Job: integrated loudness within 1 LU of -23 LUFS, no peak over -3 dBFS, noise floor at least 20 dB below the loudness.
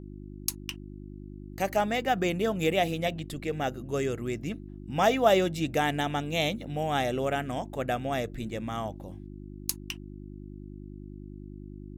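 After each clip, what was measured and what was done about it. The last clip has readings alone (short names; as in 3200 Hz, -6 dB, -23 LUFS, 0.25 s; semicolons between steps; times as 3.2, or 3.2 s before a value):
hum 50 Hz; harmonics up to 350 Hz; hum level -41 dBFS; loudness -29.5 LUFS; peak -7.0 dBFS; loudness target -23.0 LUFS
-> de-hum 50 Hz, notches 7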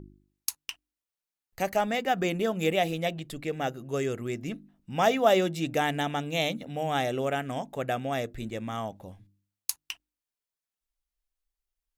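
hum none; loudness -29.5 LUFS; peak -7.0 dBFS; loudness target -23.0 LUFS
-> gain +6.5 dB; limiter -3 dBFS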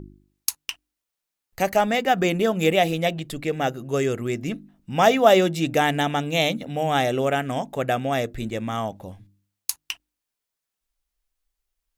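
loudness -23.0 LUFS; peak -3.0 dBFS; noise floor -85 dBFS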